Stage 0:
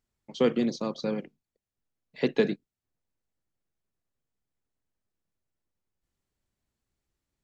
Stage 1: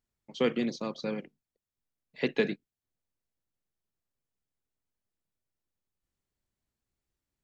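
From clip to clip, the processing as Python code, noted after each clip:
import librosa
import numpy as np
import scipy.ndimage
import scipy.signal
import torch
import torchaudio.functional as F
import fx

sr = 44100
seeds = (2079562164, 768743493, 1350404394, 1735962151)

y = fx.dynamic_eq(x, sr, hz=2300.0, q=1.1, threshold_db=-48.0, ratio=4.0, max_db=7)
y = y * librosa.db_to_amplitude(-4.0)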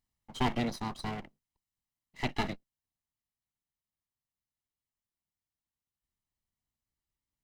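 y = fx.lower_of_two(x, sr, delay_ms=1.0)
y = fx.rider(y, sr, range_db=5, speed_s=2.0)
y = y * librosa.db_to_amplitude(-1.5)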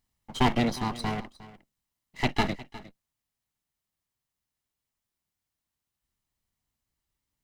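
y = x + 10.0 ** (-18.0 / 20.0) * np.pad(x, (int(358 * sr / 1000.0), 0))[:len(x)]
y = y * librosa.db_to_amplitude(6.5)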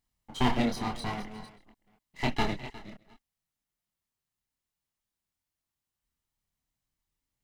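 y = fx.reverse_delay(x, sr, ms=245, wet_db=-12.5)
y = fx.chorus_voices(y, sr, voices=6, hz=0.54, base_ms=26, depth_ms=4.0, mix_pct=40)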